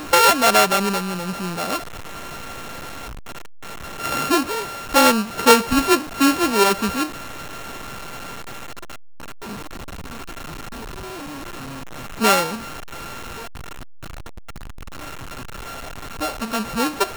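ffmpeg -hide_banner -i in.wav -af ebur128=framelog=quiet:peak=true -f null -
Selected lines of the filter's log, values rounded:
Integrated loudness:
  I:         -18.6 LUFS
  Threshold: -32.4 LUFS
Loudness range:
  LRA:        17.3 LU
  Threshold: -43.0 LUFS
  LRA low:   -35.2 LUFS
  LRA high:  -17.9 LUFS
True peak:
  Peak:        0.1 dBFS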